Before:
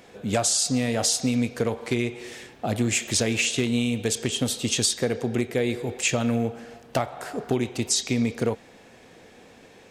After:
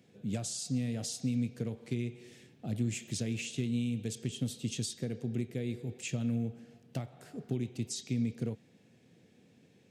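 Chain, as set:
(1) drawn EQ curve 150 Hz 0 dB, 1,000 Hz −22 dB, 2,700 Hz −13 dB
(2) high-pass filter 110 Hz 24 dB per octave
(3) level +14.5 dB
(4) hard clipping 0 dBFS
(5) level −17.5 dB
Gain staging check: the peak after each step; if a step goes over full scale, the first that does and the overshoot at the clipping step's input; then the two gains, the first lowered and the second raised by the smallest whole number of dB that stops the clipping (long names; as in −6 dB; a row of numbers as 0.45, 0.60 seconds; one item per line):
−17.0, −18.0, −3.5, −3.5, −21.0 dBFS
no step passes full scale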